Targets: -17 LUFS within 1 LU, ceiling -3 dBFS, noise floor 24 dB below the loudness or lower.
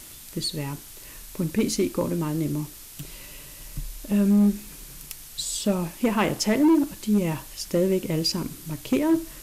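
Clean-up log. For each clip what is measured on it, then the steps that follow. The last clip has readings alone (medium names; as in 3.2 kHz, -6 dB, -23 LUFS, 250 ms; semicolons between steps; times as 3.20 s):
clipped samples 1.0%; clipping level -14.5 dBFS; noise floor -44 dBFS; noise floor target -49 dBFS; loudness -25.0 LUFS; peak level -14.5 dBFS; loudness target -17.0 LUFS
-> clip repair -14.5 dBFS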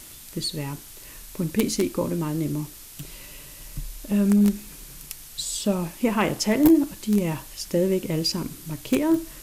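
clipped samples 0.0%; noise floor -44 dBFS; noise floor target -48 dBFS
-> noise print and reduce 6 dB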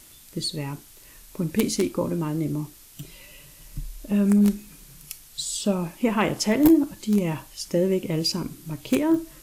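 noise floor -50 dBFS; loudness -24.0 LUFS; peak level -5.5 dBFS; loudness target -17.0 LUFS
-> trim +7 dB; peak limiter -3 dBFS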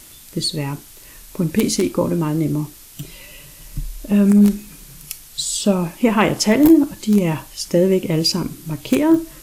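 loudness -17.5 LUFS; peak level -3.0 dBFS; noise floor -43 dBFS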